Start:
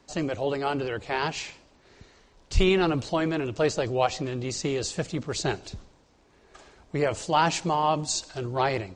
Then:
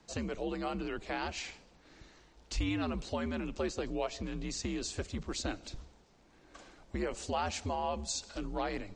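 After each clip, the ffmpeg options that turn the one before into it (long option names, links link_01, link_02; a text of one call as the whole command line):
ffmpeg -i in.wav -af "afreqshift=-83,acompressor=threshold=-34dB:ratio=2,volume=-3dB" out.wav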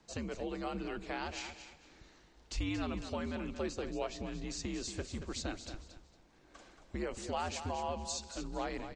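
ffmpeg -i in.wav -af "aecho=1:1:228|456|684:0.316|0.0822|0.0214,volume=-3dB" out.wav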